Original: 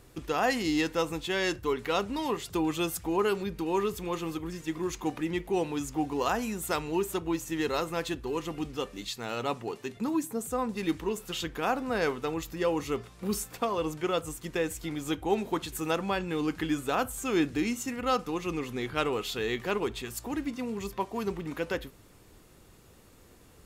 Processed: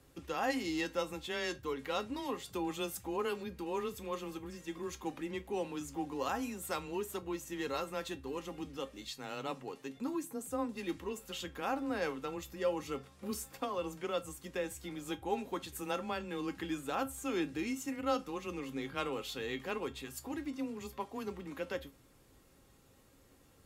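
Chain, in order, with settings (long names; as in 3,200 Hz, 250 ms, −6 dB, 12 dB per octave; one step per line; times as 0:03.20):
frequency shifter +16 Hz
tuned comb filter 270 Hz, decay 0.17 s, harmonics all, mix 70%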